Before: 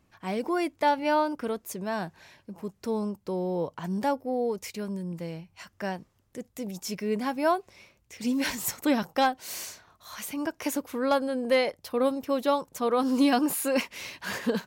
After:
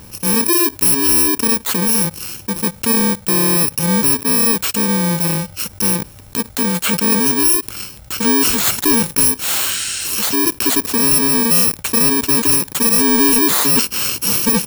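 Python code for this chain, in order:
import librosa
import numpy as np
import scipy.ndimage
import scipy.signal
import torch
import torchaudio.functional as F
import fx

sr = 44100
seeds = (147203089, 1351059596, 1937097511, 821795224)

y = fx.bit_reversed(x, sr, seeds[0], block=64)
y = fx.spec_repair(y, sr, seeds[1], start_s=9.71, length_s=0.35, low_hz=1300.0, high_hz=9900.0, source='both')
y = fx.leveller(y, sr, passes=2)
y = fx.env_flatten(y, sr, amount_pct=50)
y = y * 10.0 ** (5.5 / 20.0)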